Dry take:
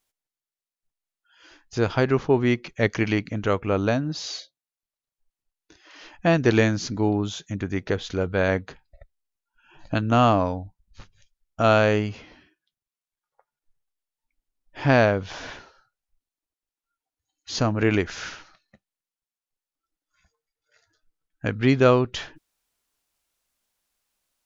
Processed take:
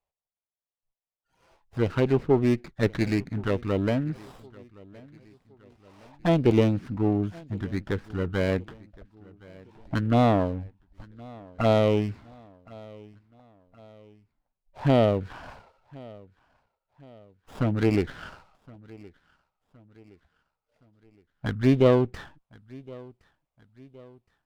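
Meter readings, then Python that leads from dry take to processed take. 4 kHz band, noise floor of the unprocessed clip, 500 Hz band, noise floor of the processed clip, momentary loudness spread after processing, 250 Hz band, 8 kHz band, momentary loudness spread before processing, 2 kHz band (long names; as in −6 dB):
−7.0 dB, below −85 dBFS, −2.5 dB, below −85 dBFS, 22 LU, −1.0 dB, can't be measured, 14 LU, −9.0 dB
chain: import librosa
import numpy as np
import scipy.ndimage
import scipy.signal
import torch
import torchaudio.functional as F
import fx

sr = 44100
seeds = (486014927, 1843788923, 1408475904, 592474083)

p1 = scipy.signal.lfilter(np.full(7, 1.0 / 7), 1.0, x)
p2 = fx.env_phaser(p1, sr, low_hz=280.0, high_hz=1600.0, full_db=-15.5)
p3 = p2 + fx.echo_feedback(p2, sr, ms=1067, feedback_pct=46, wet_db=-23.0, dry=0)
y = fx.running_max(p3, sr, window=9)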